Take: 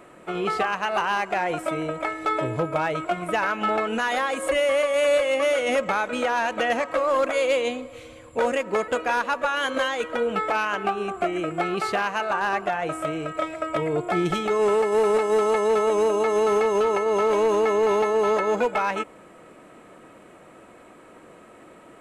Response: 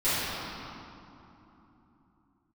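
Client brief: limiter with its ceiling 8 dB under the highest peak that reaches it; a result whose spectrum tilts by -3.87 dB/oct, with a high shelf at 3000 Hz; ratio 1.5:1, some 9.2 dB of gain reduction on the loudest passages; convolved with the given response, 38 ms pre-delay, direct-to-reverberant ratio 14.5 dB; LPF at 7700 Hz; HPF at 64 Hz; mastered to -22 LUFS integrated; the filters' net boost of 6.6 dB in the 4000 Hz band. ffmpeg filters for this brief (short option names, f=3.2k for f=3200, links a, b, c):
-filter_complex "[0:a]highpass=64,lowpass=7.7k,highshelf=f=3k:g=4.5,equalizer=f=4k:t=o:g=6.5,acompressor=threshold=-44dB:ratio=1.5,alimiter=level_in=2.5dB:limit=-24dB:level=0:latency=1,volume=-2.5dB,asplit=2[a][b];[1:a]atrim=start_sample=2205,adelay=38[c];[b][c]afir=irnorm=-1:irlink=0,volume=-29dB[d];[a][d]amix=inputs=2:normalize=0,volume=13dB"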